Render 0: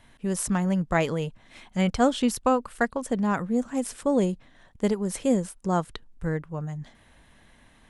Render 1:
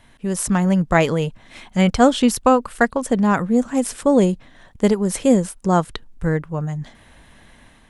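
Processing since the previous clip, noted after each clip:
automatic gain control gain up to 4 dB
level +4 dB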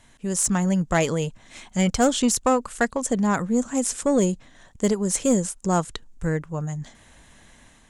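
parametric band 7,000 Hz +12.5 dB 0.7 octaves
soft clipping −6.5 dBFS, distortion −19 dB
level −4 dB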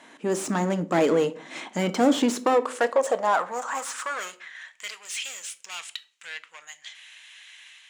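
mid-hump overdrive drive 23 dB, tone 1,700 Hz, clips at −10.5 dBFS
high-pass filter sweep 280 Hz → 2,700 Hz, 0:02.22–0:04.98
rectangular room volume 390 cubic metres, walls furnished, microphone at 0.54 metres
level −5.5 dB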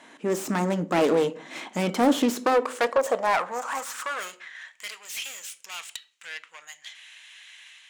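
phase distortion by the signal itself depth 0.21 ms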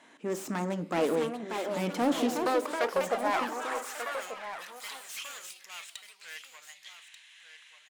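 single-tap delay 1,187 ms −10.5 dB
delay with pitch and tempo change per echo 778 ms, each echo +4 semitones, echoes 2, each echo −6 dB
level −7 dB

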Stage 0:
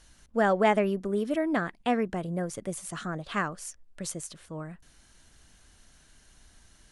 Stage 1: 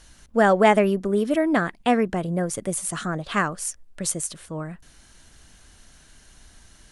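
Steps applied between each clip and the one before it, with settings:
dynamic equaliser 9,600 Hz, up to +6 dB, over −55 dBFS, Q 1.3
level +6.5 dB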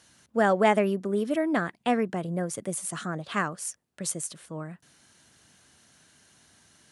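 high-pass filter 100 Hz 24 dB per octave
level −5 dB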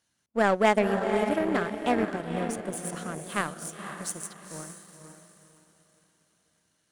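feedback delay with all-pass diffusion 501 ms, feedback 45%, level −4.5 dB
power curve on the samples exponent 1.4
level +2 dB

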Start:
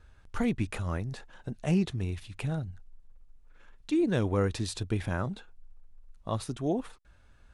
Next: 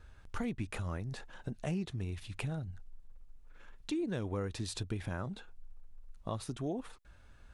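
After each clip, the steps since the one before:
downward compressor 3 to 1, threshold −37 dBFS, peak gain reduction 11.5 dB
level +1 dB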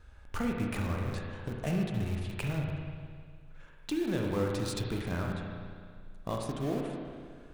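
in parallel at −9.5 dB: bit reduction 6 bits
on the sum: convolution reverb RT60 2.0 s, pre-delay 34 ms, DRR 0 dB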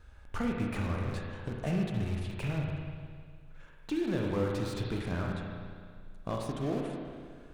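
slew-rate limiting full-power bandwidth 32 Hz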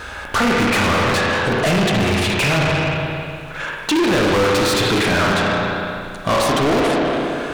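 mid-hump overdrive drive 33 dB, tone 6,600 Hz, clips at −18 dBFS
level +8.5 dB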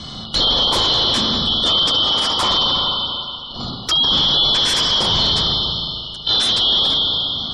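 band-splitting scrambler in four parts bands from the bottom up 2413
gate on every frequency bin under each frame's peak −30 dB strong

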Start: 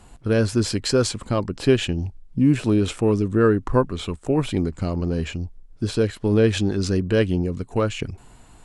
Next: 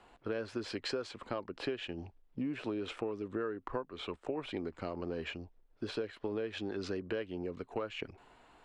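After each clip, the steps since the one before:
three-way crossover with the lows and the highs turned down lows −17 dB, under 310 Hz, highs −21 dB, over 4,000 Hz
downward compressor 12 to 1, threshold −28 dBFS, peak gain reduction 15 dB
level −5 dB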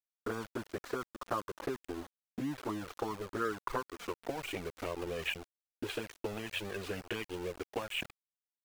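low-pass filter sweep 1,200 Hz → 2,800 Hz, 0:03.34–0:04.63
centre clipping without the shift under −41.5 dBFS
flanger swept by the level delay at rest 8.8 ms, full sweep at −27.5 dBFS
level +4 dB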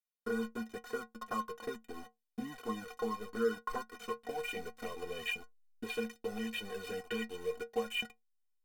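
stiff-string resonator 220 Hz, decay 0.22 s, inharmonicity 0.03
in parallel at −8.5 dB: slack as between gear wheels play −58 dBFS
on the sum: level +8 dB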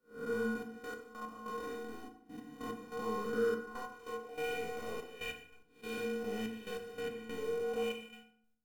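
spectrum smeared in time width 222 ms
gate pattern "xxxxxx..x..x.." 144 BPM −12 dB
feedback delay network reverb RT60 0.63 s, low-frequency decay 1.3×, high-frequency decay 0.7×, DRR 3 dB
level +2 dB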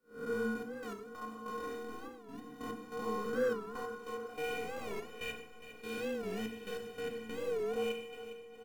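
repeating echo 409 ms, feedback 57%, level −12.5 dB
wow of a warped record 45 rpm, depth 160 cents

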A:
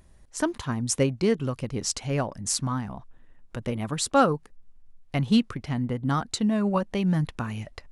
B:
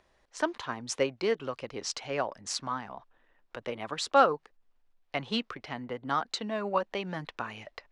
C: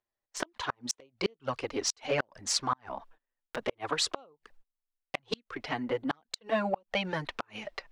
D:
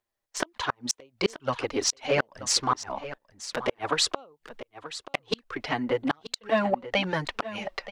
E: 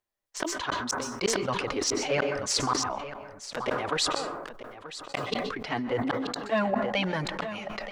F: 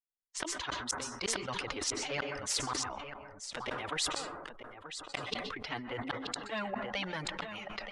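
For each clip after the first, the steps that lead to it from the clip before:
three-way crossover with the lows and the highs turned down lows −19 dB, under 380 Hz, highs −22 dB, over 5,600 Hz
noise gate −58 dBFS, range −30 dB; flanger swept by the level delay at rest 8.7 ms, full sweep at −24 dBFS; gate with flip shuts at −24 dBFS, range −37 dB; level +8 dB
single-tap delay 931 ms −14 dB; level +5 dB
dense smooth reverb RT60 1.1 s, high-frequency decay 0.25×, pre-delay 115 ms, DRR 15 dB; level that may fall only so fast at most 36 dB per second; level −3.5 dB
spectral dynamics exaggerated over time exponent 1.5; downsampling to 22,050 Hz; every bin compressed towards the loudest bin 2 to 1

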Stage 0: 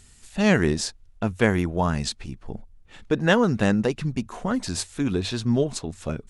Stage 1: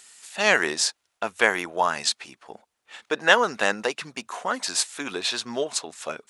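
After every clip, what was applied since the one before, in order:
high-pass filter 730 Hz 12 dB per octave
level +6 dB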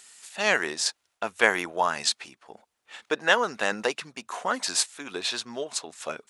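sample-and-hold tremolo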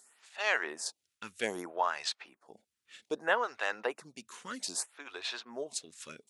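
phaser with staggered stages 0.63 Hz
level −5.5 dB

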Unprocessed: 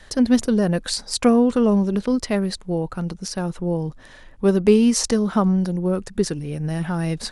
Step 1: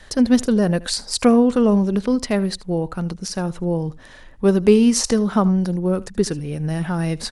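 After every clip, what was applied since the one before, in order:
single-tap delay 77 ms −21 dB
level +1.5 dB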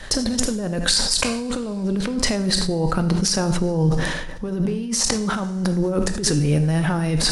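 compressor whose output falls as the input rises −25 dBFS, ratio −1
convolution reverb, pre-delay 3 ms, DRR 9 dB
level that may fall only so fast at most 39 dB per second
level +2 dB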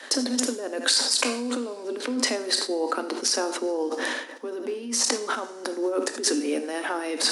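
Chebyshev high-pass filter 240 Hz, order 8
level −1.5 dB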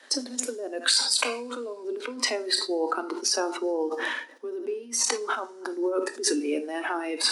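noise reduction from a noise print of the clip's start 11 dB

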